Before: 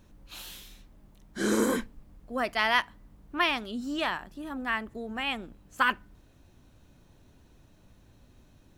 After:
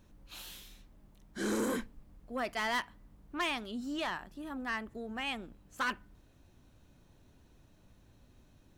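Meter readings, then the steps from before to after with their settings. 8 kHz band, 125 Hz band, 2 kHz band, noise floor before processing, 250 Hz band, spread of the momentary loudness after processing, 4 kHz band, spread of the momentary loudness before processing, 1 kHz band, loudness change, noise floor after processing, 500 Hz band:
-5.5 dB, -5.5 dB, -7.5 dB, -60 dBFS, -5.5 dB, 16 LU, -7.0 dB, 18 LU, -7.5 dB, -7.5 dB, -64 dBFS, -6.0 dB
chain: soft clip -23 dBFS, distortion -11 dB; gain -4 dB

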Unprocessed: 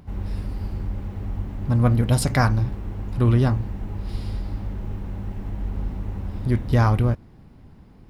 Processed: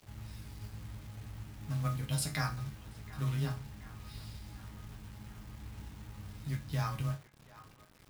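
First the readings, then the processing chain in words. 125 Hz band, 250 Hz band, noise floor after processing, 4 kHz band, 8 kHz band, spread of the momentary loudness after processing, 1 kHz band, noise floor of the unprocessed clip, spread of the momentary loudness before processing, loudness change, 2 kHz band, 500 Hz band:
-15.5 dB, -17.5 dB, -60 dBFS, -7.5 dB, -7.0 dB, 15 LU, -14.5 dB, -48 dBFS, 13 LU, -15.5 dB, -12.0 dB, -20.0 dB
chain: passive tone stack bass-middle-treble 5-5-5; in parallel at -2.5 dB: compressor 4:1, threshold -51 dBFS, peak gain reduction 18.5 dB; on the sum: frequency shift +15 Hz; resonator bank G#2 sus4, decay 0.25 s; companded quantiser 6-bit; narrowing echo 0.729 s, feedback 67%, band-pass 1200 Hz, level -16 dB; gain +10 dB

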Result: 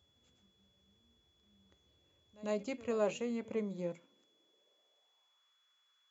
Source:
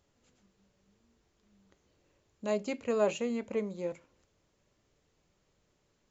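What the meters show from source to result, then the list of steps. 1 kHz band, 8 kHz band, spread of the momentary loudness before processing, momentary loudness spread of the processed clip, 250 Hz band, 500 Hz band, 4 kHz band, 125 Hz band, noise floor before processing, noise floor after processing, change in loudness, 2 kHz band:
-5.0 dB, n/a, 10 LU, 9 LU, -3.5 dB, -4.5 dB, -4.5 dB, -1.0 dB, -75 dBFS, -75 dBFS, -4.5 dB, -5.0 dB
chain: high-pass sweep 74 Hz -> 1300 Hz, 3.2–5.53; whine 3400 Hz -67 dBFS; reverse echo 99 ms -21 dB; gain -5 dB

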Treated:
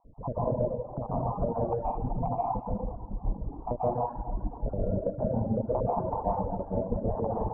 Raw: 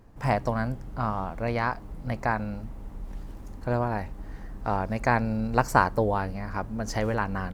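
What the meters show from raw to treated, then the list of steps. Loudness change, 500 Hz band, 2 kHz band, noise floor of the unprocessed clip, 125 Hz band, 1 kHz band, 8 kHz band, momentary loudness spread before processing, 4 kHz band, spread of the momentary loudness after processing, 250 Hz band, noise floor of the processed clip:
-3.5 dB, +0.5 dB, under -35 dB, -42 dBFS, -2.5 dB, -4.5 dB, under -35 dB, 18 LU, under -40 dB, 7 LU, -3.0 dB, -44 dBFS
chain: random spectral dropouts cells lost 67%; AGC gain up to 8 dB; limiter -15.5 dBFS, peak gain reduction 14 dB; steep low-pass 970 Hz 48 dB/oct; compressor 6:1, threshold -31 dBFS, peak gain reduction 10.5 dB; dynamic EQ 530 Hz, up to +6 dB, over -51 dBFS, Q 2.7; plate-style reverb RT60 2 s, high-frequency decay 0.6×, pre-delay 0.11 s, DRR -7.5 dB; reverb removal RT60 1.1 s

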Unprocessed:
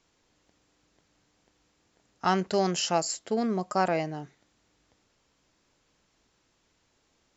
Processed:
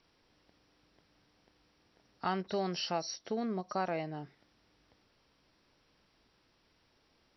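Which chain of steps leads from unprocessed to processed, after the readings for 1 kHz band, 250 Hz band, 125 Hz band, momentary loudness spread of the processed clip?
-8.5 dB, -8.0 dB, -8.0 dB, 8 LU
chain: nonlinear frequency compression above 3400 Hz 1.5:1; compressor 1.5:1, threshold -45 dBFS, peak gain reduction 9 dB; ending taper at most 500 dB/s

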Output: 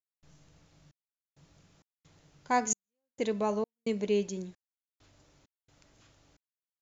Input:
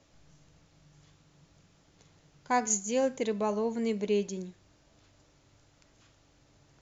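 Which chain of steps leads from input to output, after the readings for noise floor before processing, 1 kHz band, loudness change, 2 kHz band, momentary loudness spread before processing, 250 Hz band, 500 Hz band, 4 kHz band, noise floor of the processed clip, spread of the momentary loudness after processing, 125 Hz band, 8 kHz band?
-65 dBFS, -0.5 dB, -2.0 dB, -0.5 dB, 10 LU, -2.0 dB, -2.0 dB, -1.5 dB, under -85 dBFS, 9 LU, -0.5 dB, n/a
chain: step gate ".xxx..xx" 66 bpm -60 dB

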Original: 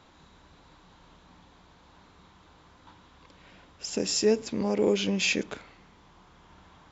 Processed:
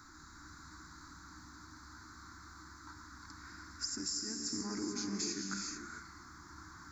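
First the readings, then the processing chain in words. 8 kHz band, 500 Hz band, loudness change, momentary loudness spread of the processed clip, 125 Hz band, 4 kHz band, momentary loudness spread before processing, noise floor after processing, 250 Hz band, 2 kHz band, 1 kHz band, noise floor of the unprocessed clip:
n/a, -22.5 dB, -13.0 dB, 16 LU, -11.0 dB, -8.0 dB, 15 LU, -55 dBFS, -10.5 dB, -11.5 dB, -5.5 dB, -58 dBFS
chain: EQ curve 100 Hz 0 dB, 190 Hz -8 dB, 320 Hz +4 dB, 500 Hz -29 dB, 1400 Hz +9 dB, 2100 Hz -4 dB, 3000 Hz -27 dB, 4400 Hz +6 dB, 11000 Hz +12 dB; compressor 12:1, threshold -38 dBFS, peak gain reduction 21.5 dB; non-linear reverb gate 0.47 s rising, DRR 2 dB; gain +1 dB

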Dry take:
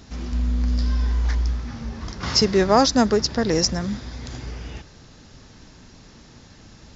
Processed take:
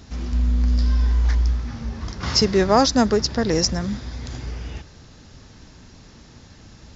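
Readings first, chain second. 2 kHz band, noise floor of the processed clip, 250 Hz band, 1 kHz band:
0.0 dB, -47 dBFS, +0.5 dB, 0.0 dB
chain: bell 74 Hz +4 dB 1.2 oct

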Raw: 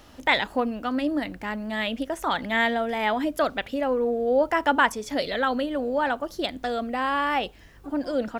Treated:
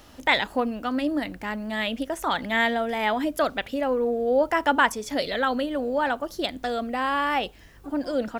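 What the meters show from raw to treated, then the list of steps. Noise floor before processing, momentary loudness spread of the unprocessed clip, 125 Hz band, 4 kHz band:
-49 dBFS, 7 LU, 0.0 dB, +1.0 dB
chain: high shelf 6100 Hz +4 dB

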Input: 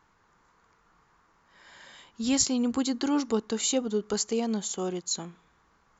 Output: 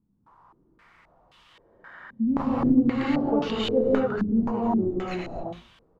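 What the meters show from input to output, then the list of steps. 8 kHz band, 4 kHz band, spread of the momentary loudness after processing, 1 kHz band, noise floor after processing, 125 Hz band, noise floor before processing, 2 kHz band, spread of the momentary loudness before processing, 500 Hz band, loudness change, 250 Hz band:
n/a, -4.0 dB, 12 LU, +7.0 dB, -65 dBFS, +9.0 dB, -66 dBFS, +5.0 dB, 7 LU, +5.0 dB, +3.5 dB, +5.5 dB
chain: tracing distortion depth 0.18 ms; added noise blue -56 dBFS; on a send: frequency-shifting echo 90 ms, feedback 35%, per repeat -120 Hz, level -17 dB; on the sum: non-linear reverb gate 0.3 s rising, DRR -6 dB; stepped low-pass 3.8 Hz 220–3100 Hz; gain -4.5 dB

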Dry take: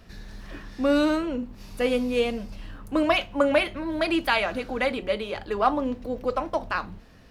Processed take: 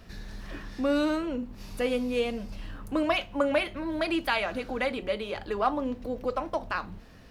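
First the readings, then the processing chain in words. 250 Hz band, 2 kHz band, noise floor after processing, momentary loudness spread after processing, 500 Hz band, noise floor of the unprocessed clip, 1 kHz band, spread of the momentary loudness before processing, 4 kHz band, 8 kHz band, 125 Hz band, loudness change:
-3.5 dB, -4.0 dB, -49 dBFS, 15 LU, -4.0 dB, -50 dBFS, -4.0 dB, 18 LU, -4.0 dB, -3.5 dB, -2.0 dB, -4.0 dB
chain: in parallel at +1 dB: compressor, threshold -34 dBFS, peak gain reduction 17 dB; on the sum: bit-crush 12-bit; gain -6 dB

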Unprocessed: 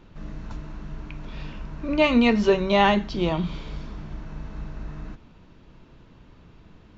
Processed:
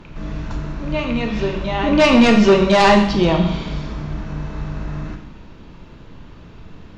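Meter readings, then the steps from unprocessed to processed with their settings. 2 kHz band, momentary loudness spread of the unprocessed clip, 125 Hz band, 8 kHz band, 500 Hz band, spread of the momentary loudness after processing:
+7.5 dB, 20 LU, +9.5 dB, n/a, +8.0 dB, 17 LU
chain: reverse echo 1.055 s -13.5 dB; sine folder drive 7 dB, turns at -5.5 dBFS; Schroeder reverb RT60 0.8 s, combs from 27 ms, DRR 4.5 dB; gain -2 dB

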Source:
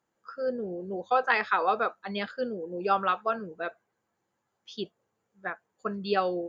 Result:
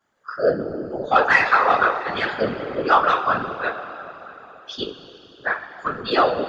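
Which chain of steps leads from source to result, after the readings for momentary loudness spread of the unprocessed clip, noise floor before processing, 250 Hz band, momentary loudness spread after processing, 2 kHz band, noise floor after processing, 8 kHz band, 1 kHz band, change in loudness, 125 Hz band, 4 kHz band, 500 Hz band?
14 LU, -80 dBFS, +6.0 dB, 20 LU, +11.5 dB, -48 dBFS, n/a, +9.0 dB, +9.5 dB, +7.5 dB, +10.5 dB, +8.0 dB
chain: overdrive pedal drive 12 dB, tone 3400 Hz, clips at -8.5 dBFS; two-slope reverb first 0.21 s, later 3.6 s, from -21 dB, DRR -9.5 dB; whisperiser; gain -4.5 dB

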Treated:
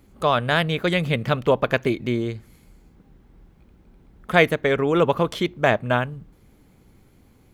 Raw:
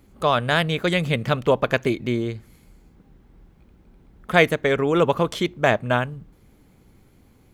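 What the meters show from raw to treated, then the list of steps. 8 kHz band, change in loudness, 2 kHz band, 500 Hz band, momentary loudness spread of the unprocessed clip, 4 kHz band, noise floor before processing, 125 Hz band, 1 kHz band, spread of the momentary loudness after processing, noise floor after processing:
n/a, 0.0 dB, 0.0 dB, 0.0 dB, 7 LU, -1.0 dB, -56 dBFS, 0.0 dB, 0.0 dB, 7 LU, -56 dBFS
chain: dynamic EQ 7400 Hz, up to -5 dB, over -45 dBFS, Q 1.2

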